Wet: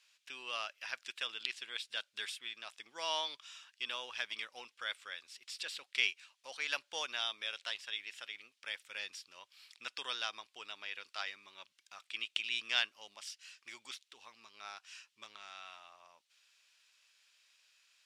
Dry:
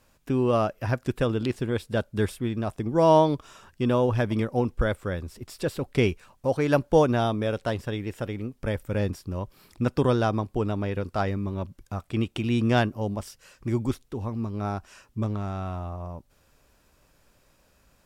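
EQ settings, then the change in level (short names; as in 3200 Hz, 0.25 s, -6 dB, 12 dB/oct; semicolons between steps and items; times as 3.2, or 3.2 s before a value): ladder band-pass 3800 Hz, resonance 25%; +12.5 dB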